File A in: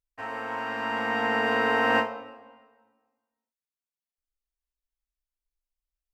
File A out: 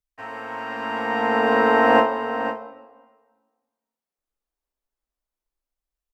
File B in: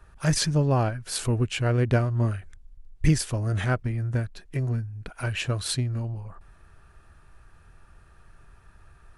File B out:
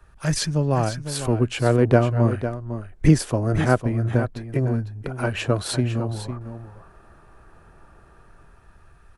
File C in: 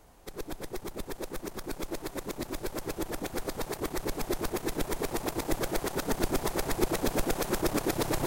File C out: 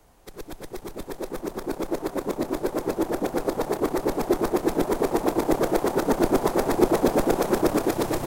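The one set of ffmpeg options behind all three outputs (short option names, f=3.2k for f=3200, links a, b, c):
-filter_complex "[0:a]acrossover=split=180|1200[a][b][c];[b]dynaudnorm=f=510:g=5:m=11dB[d];[a][d][c]amix=inputs=3:normalize=0,aecho=1:1:503:0.299"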